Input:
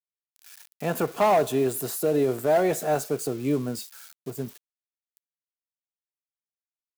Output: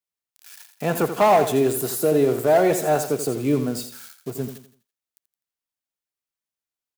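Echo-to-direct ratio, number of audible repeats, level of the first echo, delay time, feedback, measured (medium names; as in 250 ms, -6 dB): -9.5 dB, 3, -10.0 dB, 84 ms, 34%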